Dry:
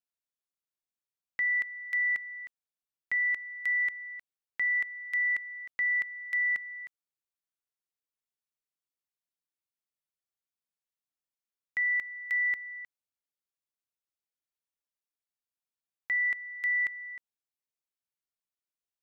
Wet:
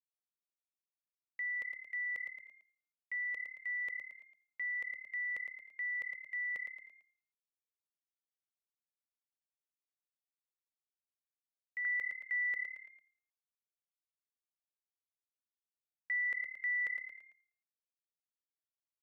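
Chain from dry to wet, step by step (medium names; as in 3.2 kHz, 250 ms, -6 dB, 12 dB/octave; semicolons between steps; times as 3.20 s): gate with hold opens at -31 dBFS; peaking EQ 500 Hz +11.5 dB 0.52 oct; frequency-shifting echo 112 ms, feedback 45%, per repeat +36 Hz, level -14 dB; peak limiter -31 dBFS, peak gain reduction 8.5 dB; peaking EQ 1.6 kHz -12 dB 0.33 oct, from 11.85 s +2 dB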